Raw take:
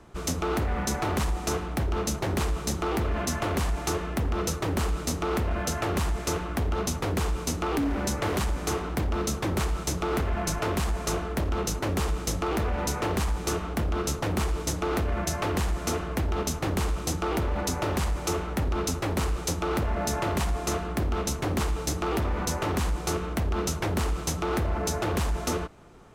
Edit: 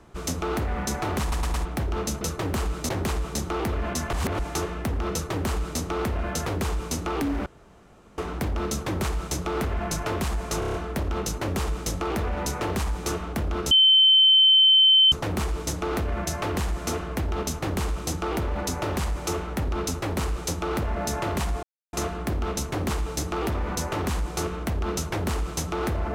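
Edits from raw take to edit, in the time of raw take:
1.21 s: stutter in place 0.11 s, 4 plays
3.45–3.71 s: reverse
4.44–5.12 s: copy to 2.21 s
5.78–7.02 s: delete
8.02–8.74 s: room tone
11.15 s: stutter 0.03 s, 6 plays
14.12 s: add tone 3.08 kHz -13 dBFS 1.41 s
20.63 s: insert silence 0.30 s

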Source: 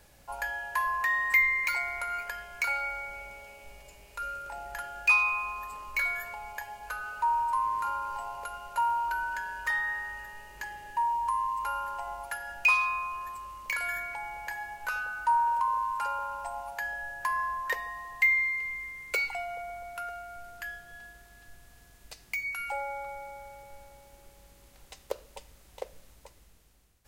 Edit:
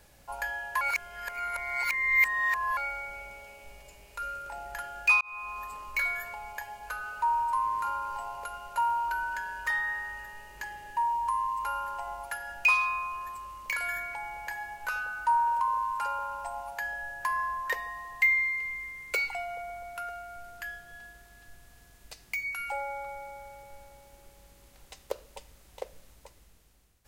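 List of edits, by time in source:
0.81–2.77 s: reverse
5.21–5.60 s: fade in

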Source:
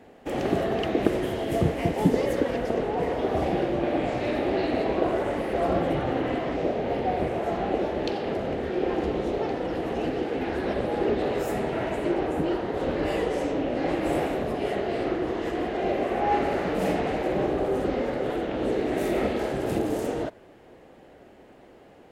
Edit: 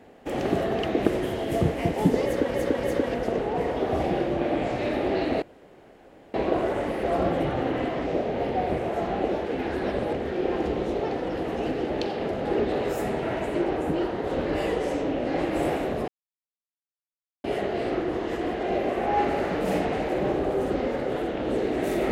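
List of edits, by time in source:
2.25–2.54 s: loop, 3 plays
4.84 s: insert room tone 0.92 s
7.96–8.51 s: swap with 10.28–10.95 s
14.58 s: insert silence 1.36 s

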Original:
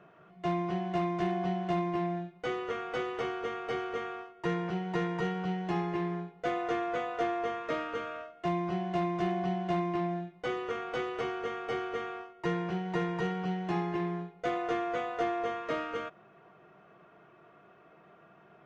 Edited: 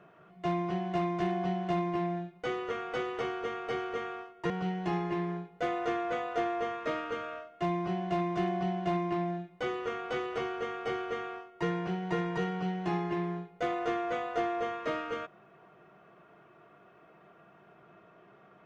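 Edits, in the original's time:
4.50–5.33 s: delete

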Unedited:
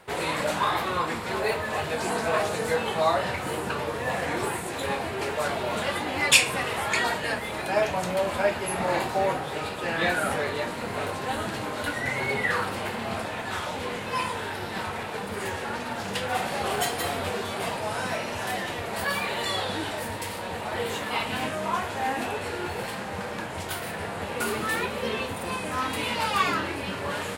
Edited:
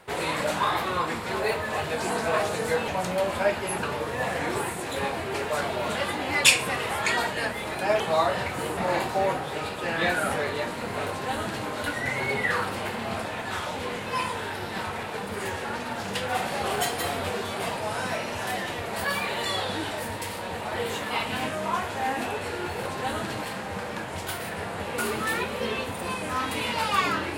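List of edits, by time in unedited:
2.88–3.65 s: swap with 7.87–8.77 s
11.09–11.67 s: copy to 22.85 s

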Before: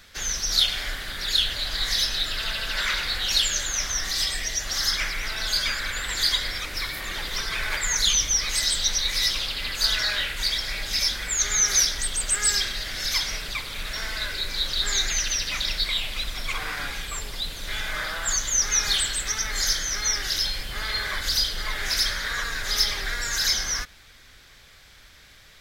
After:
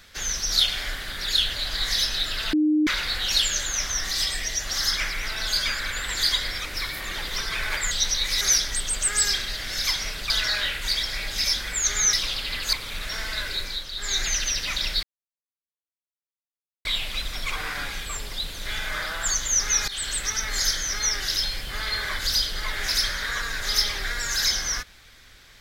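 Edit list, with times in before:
2.53–2.87 s: bleep 305 Hz -17 dBFS
7.91–8.75 s: delete
9.25–9.85 s: swap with 11.68–13.57 s
14.43–15.06 s: dip -8.5 dB, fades 0.26 s
15.87 s: insert silence 1.82 s
18.90–19.15 s: fade in, from -19 dB

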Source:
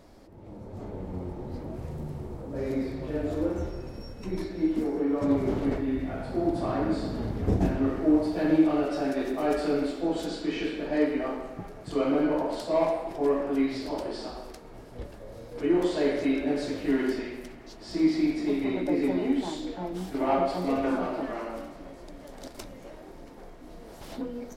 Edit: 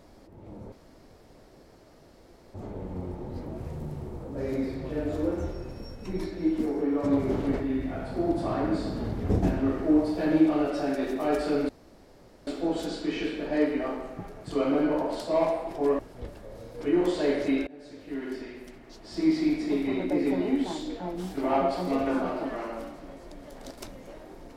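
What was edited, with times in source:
0.72 s: insert room tone 1.82 s
9.87 s: insert room tone 0.78 s
13.39–14.76 s: delete
16.44–18.12 s: fade in, from -23.5 dB

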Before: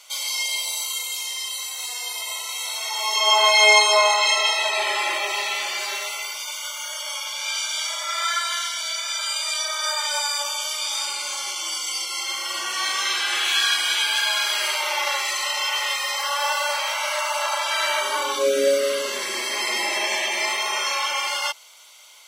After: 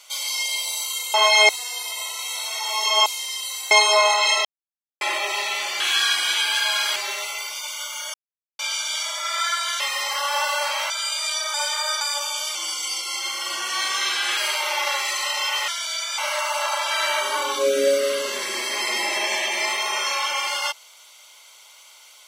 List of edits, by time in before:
1.14–1.79 s: swap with 3.36–3.71 s
4.45–5.01 s: mute
6.98–7.43 s: mute
8.64–9.14 s: swap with 15.88–16.98 s
9.78–10.25 s: reverse
10.79–11.59 s: delete
13.41–14.57 s: move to 5.80 s

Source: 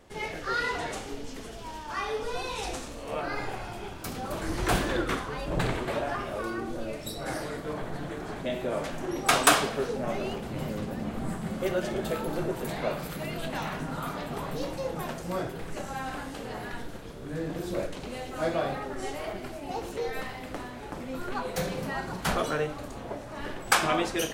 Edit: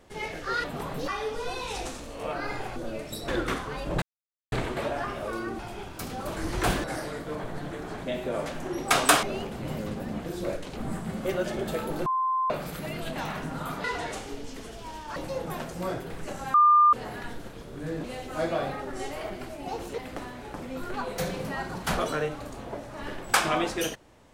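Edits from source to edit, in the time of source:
0.64–1.96 s: swap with 14.21–14.65 s
3.64–4.89 s: swap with 6.70–7.22 s
5.63 s: insert silence 0.50 s
9.61–10.14 s: delete
12.43–12.87 s: bleep 1.04 kHz -23 dBFS
16.03–16.42 s: bleep 1.2 kHz -14.5 dBFS
17.53–18.07 s: move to 11.14 s
20.01–20.36 s: delete

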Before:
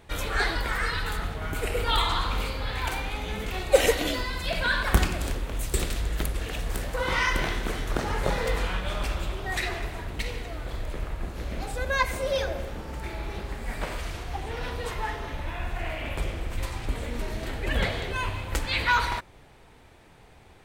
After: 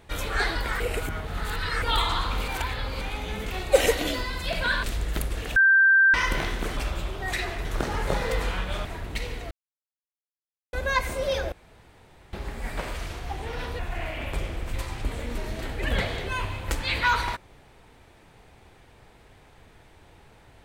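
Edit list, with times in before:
0.80–1.82 s: reverse
2.48–3.01 s: reverse
4.84–5.88 s: delete
6.60–7.18 s: bleep 1.57 kHz -14 dBFS
9.01–9.89 s: move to 7.81 s
10.55–11.77 s: mute
12.56–13.37 s: room tone
14.83–15.63 s: delete

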